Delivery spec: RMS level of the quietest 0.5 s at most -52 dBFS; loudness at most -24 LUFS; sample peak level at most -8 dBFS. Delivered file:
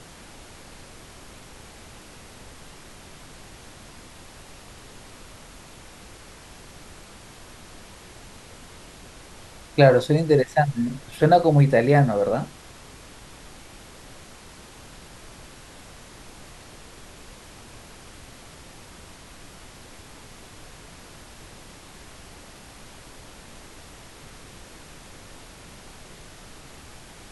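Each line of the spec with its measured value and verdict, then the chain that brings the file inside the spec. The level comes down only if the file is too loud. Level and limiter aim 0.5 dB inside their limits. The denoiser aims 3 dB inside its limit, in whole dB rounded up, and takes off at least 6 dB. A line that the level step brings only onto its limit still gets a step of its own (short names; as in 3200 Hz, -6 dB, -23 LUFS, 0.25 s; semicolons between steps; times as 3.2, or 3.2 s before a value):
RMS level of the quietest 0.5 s -45 dBFS: fail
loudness -19.5 LUFS: fail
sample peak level -2.5 dBFS: fail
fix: denoiser 6 dB, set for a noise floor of -45 dBFS; gain -5 dB; limiter -8.5 dBFS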